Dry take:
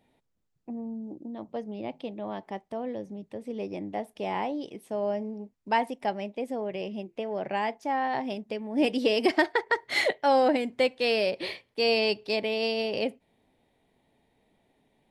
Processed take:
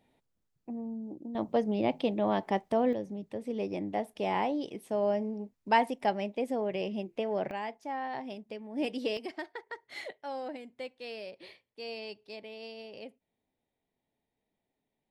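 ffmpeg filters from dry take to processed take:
ffmpeg -i in.wav -af "asetnsamples=nb_out_samples=441:pad=0,asendcmd='1.35 volume volume 7dB;2.93 volume volume 0.5dB;7.51 volume volume -8dB;9.17 volume volume -16.5dB',volume=-2dB" out.wav

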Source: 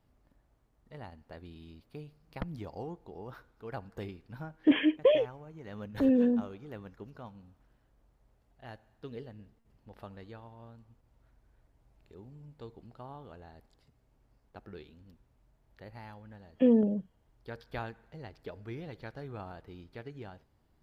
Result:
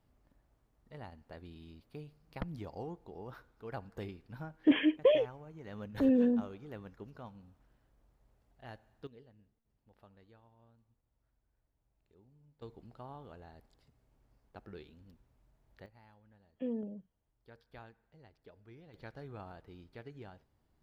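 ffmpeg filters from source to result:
ffmpeg -i in.wav -af "asetnsamples=nb_out_samples=441:pad=0,asendcmd='9.07 volume volume -14dB;12.62 volume volume -2dB;15.86 volume volume -14dB;18.94 volume volume -4.5dB',volume=-2dB" out.wav

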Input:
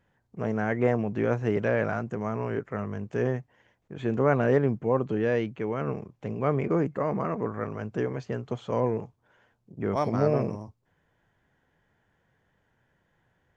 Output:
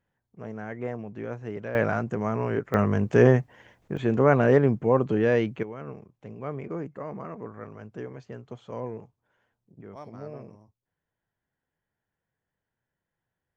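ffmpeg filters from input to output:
ffmpeg -i in.wav -af "asetnsamples=nb_out_samples=441:pad=0,asendcmd='1.75 volume volume 3dB;2.74 volume volume 10dB;3.97 volume volume 3.5dB;5.63 volume volume -8.5dB;9.81 volume volume -16dB',volume=-9dB" out.wav

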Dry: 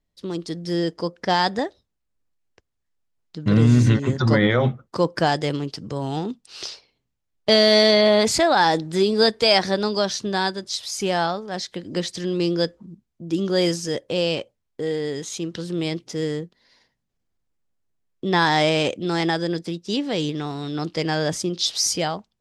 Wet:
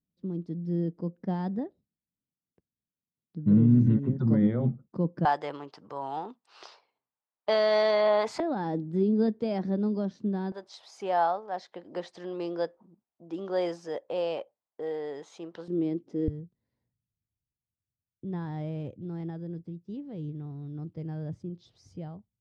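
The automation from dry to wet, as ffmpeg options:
ffmpeg -i in.wav -af "asetnsamples=nb_out_samples=441:pad=0,asendcmd='5.25 bandpass f 950;8.4 bandpass f 220;10.52 bandpass f 790;15.68 bandpass f 290;16.28 bandpass f 100',bandpass=frequency=190:width_type=q:width=2:csg=0" out.wav

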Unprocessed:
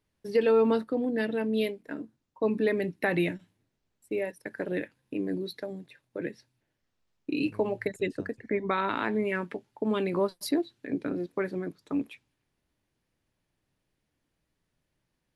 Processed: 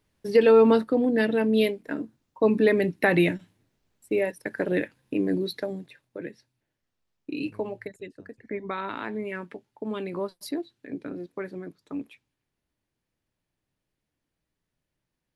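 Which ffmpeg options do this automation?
ffmpeg -i in.wav -af "volume=16dB,afade=type=out:start_time=5.63:duration=0.6:silence=0.375837,afade=type=out:start_time=7.57:duration=0.59:silence=0.266073,afade=type=in:start_time=8.16:duration=0.31:silence=0.316228" out.wav

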